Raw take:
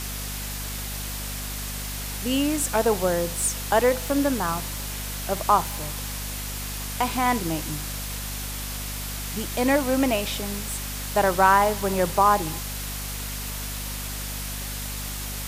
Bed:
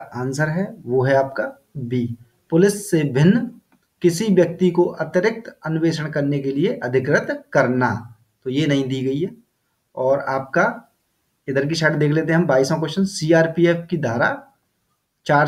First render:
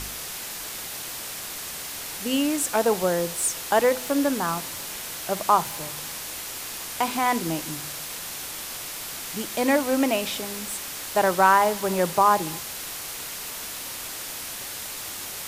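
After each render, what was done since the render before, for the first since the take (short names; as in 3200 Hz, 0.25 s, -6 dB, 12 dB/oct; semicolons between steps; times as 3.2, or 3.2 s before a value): de-hum 50 Hz, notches 5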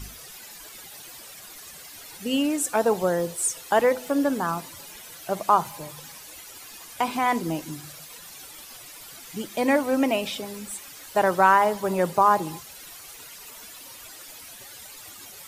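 denoiser 13 dB, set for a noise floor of -35 dBFS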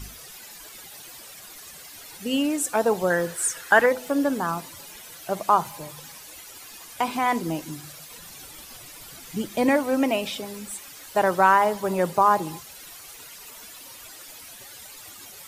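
3.1–3.86 bell 1600 Hz +14.5 dB 0.58 oct; 8.11–9.69 low shelf 270 Hz +8 dB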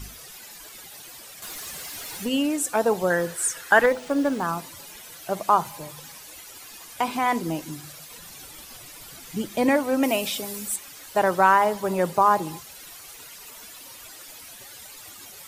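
1.42–2.29 power-law curve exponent 0.7; 3.83–4.44 running maximum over 3 samples; 10.03–10.76 high shelf 6300 Hz +11 dB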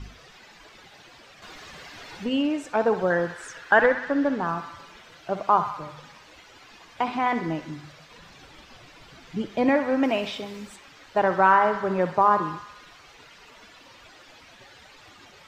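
air absorption 190 m; narrowing echo 64 ms, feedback 71%, band-pass 1600 Hz, level -8.5 dB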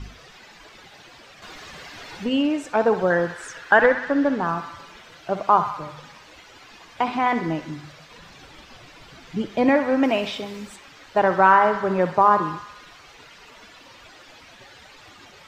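gain +3 dB; limiter -3 dBFS, peak gain reduction 2 dB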